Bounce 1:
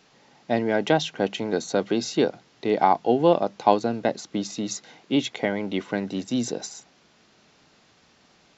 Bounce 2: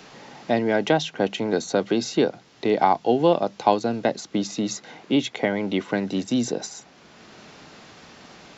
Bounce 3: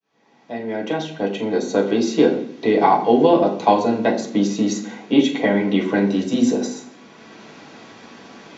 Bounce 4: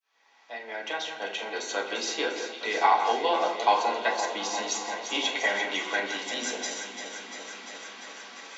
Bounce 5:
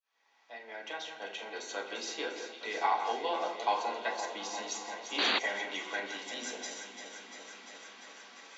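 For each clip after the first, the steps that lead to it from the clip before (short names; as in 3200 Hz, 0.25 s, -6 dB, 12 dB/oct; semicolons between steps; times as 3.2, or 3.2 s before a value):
three-band squash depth 40%; gain +1.5 dB
opening faded in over 2.32 s; reverb RT60 0.65 s, pre-delay 3 ms, DRR -5 dB; gain -5.5 dB
HPF 1100 Hz 12 dB/oct; echo with dull and thin repeats by turns 0.173 s, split 2500 Hz, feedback 87%, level -8 dB
painted sound noise, 5.18–5.39, 200–4700 Hz -21 dBFS; gain -8 dB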